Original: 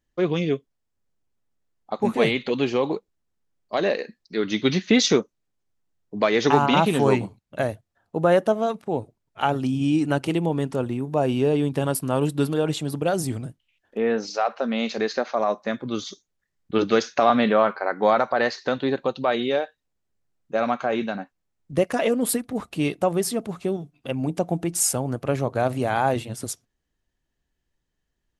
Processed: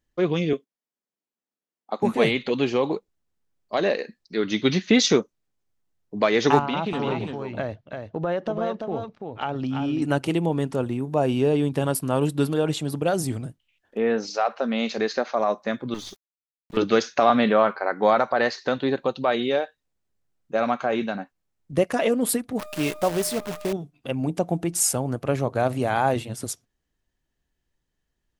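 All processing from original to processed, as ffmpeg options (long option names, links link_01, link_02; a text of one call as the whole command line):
ffmpeg -i in.wav -filter_complex "[0:a]asettb=1/sr,asplit=3[link_01][link_02][link_03];[link_01]atrim=end=0.534[link_04];[link_02]atrim=start=0.53:end=2.03,asetpts=PTS-STARTPTS,afade=type=in:duration=0.004:curve=qsin,afade=type=out:start_time=1.496:duration=0.004:curve=qsin,highpass=frequency=200:width=0.5412,highpass=frequency=200:width=1.3066,agate=range=-8dB:threshold=-53dB:ratio=16:release=100:detection=peak[link_05];[link_03]atrim=start=2.026[link_06];[link_04][link_05]acrossfade=duration=0.004:curve1=hsin:curve2=qsin[link_07];[link_07][link_06]acrossfade=duration=0.004:curve1=qsin:curve2=hsin,asettb=1/sr,asplit=3[link_08][link_09][link_10];[link_08]atrim=end=6.594[link_11];[link_09]atrim=start=6.59:end=10.02,asetpts=PTS-STARTPTS,afade=type=in:duration=0.004:curve=qsin,afade=type=out:start_time=3.426:duration=0.004:curve=qsin,lowpass=frequency=5200:width=0.5412,lowpass=frequency=5200:width=1.3066,acompressor=threshold=-24dB:ratio=3:attack=3.2:release=140:knee=1:detection=peak,aecho=1:1:337:0.531,atrim=end_sample=151263[link_12];[link_10]atrim=start=10.016[link_13];[link_11][link_12]acrossfade=duration=0.004:curve1=hsin:curve2=qsin[link_14];[link_14][link_13]acrossfade=duration=0.004:curve1=qsin:curve2=hsin,asettb=1/sr,asplit=3[link_15][link_16][link_17];[link_15]atrim=end=15.944[link_18];[link_16]atrim=start=15.94:end=16.77,asetpts=PTS-STARTPTS,afade=type=in:duration=0.004:curve=qsin,afade=type=out:start_time=0.826:duration=0.004:curve=qsin,aeval=exprs='(tanh(28.2*val(0)+0.55)-tanh(0.55))/28.2':channel_layout=same,bandreject=frequency=50:width_type=h:width=6,bandreject=frequency=100:width_type=h:width=6,bandreject=frequency=150:width_type=h:width=6,aeval=exprs='val(0)*gte(abs(val(0)),0.00335)':channel_layout=same[link_19];[link_17]atrim=start=16.766[link_20];[link_18][link_19]acrossfade=duration=0.004:curve1=hsin:curve2=qsin[link_21];[link_21][link_20]acrossfade=duration=0.004:curve1=qsin:curve2=hsin,asettb=1/sr,asplit=3[link_22][link_23][link_24];[link_22]atrim=end=22.594[link_25];[link_23]atrim=start=22.59:end=23.73,asetpts=PTS-STARTPTS,afade=type=in:duration=0.004:curve=qsin,afade=type=out:start_time=1.136:duration=0.004:curve=qsin,aeval=exprs='val(0)+0.0224*sin(2*PI*610*n/s)':channel_layout=same,lowshelf=frequency=400:gain=-3.5,acrusher=bits=6:dc=4:mix=0:aa=0.000001[link_26];[link_24]atrim=start=23.726[link_27];[link_25][link_26]acrossfade=duration=0.004:curve1=hsin:curve2=qsin[link_28];[link_28][link_27]acrossfade=duration=0.004:curve1=qsin:curve2=hsin" out.wav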